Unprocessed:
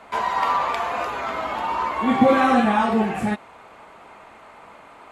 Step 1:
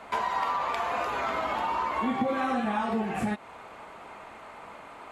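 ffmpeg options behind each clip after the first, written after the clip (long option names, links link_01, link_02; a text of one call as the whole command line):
ffmpeg -i in.wav -af "acompressor=threshold=-26dB:ratio=5" out.wav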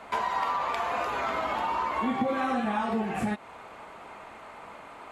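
ffmpeg -i in.wav -af anull out.wav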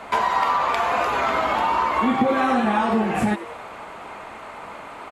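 ffmpeg -i in.wav -filter_complex "[0:a]asplit=7[link_01][link_02][link_03][link_04][link_05][link_06][link_07];[link_02]adelay=92,afreqshift=130,volume=-15.5dB[link_08];[link_03]adelay=184,afreqshift=260,volume=-20.1dB[link_09];[link_04]adelay=276,afreqshift=390,volume=-24.7dB[link_10];[link_05]adelay=368,afreqshift=520,volume=-29.2dB[link_11];[link_06]adelay=460,afreqshift=650,volume=-33.8dB[link_12];[link_07]adelay=552,afreqshift=780,volume=-38.4dB[link_13];[link_01][link_08][link_09][link_10][link_11][link_12][link_13]amix=inputs=7:normalize=0,volume=8dB" out.wav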